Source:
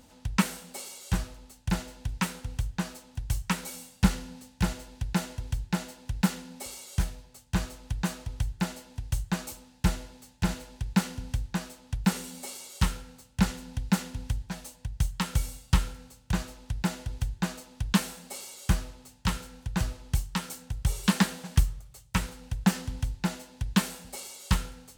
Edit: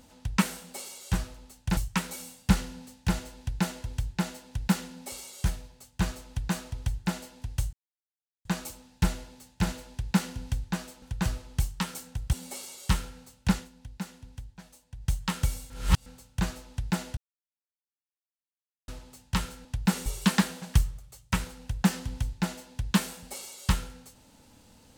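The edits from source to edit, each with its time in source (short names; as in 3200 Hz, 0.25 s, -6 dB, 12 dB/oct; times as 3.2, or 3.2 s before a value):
1.77–3.31 cut
9.27 insert silence 0.72 s
11.84–12.25 swap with 19.57–20.88
13.41–15.04 dip -11.5 dB, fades 0.21 s
15.62–15.98 reverse
17.09–18.8 mute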